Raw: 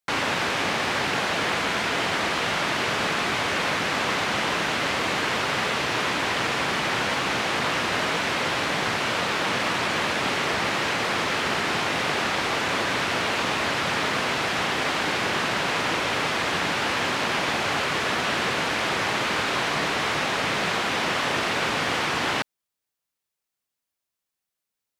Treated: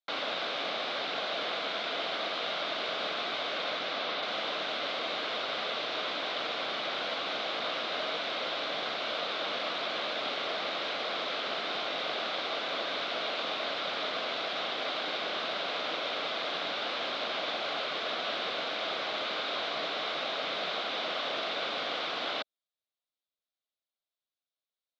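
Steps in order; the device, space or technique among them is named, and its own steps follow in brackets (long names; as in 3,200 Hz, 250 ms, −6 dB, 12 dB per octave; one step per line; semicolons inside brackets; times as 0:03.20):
phone earpiece (loudspeaker in its box 380–4,400 Hz, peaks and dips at 380 Hz −4 dB, 640 Hz +5 dB, 920 Hz −9 dB, 1,800 Hz −9 dB, 2,600 Hz −4 dB, 3,700 Hz +7 dB)
0:03.64–0:04.21: low-pass filter 10,000 Hz → 5,500 Hz 24 dB per octave
level −6.5 dB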